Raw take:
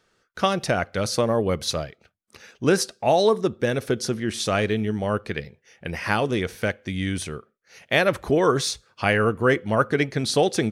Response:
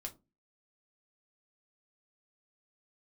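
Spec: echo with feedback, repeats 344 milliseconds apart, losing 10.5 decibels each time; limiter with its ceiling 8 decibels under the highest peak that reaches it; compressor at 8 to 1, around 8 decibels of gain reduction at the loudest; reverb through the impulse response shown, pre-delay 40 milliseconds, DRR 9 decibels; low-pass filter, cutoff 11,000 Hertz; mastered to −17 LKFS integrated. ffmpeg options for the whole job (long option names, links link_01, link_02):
-filter_complex "[0:a]lowpass=11000,acompressor=threshold=-22dB:ratio=8,alimiter=limit=-18.5dB:level=0:latency=1,aecho=1:1:344|688|1032:0.299|0.0896|0.0269,asplit=2[link_01][link_02];[1:a]atrim=start_sample=2205,adelay=40[link_03];[link_02][link_03]afir=irnorm=-1:irlink=0,volume=-6dB[link_04];[link_01][link_04]amix=inputs=2:normalize=0,volume=12dB"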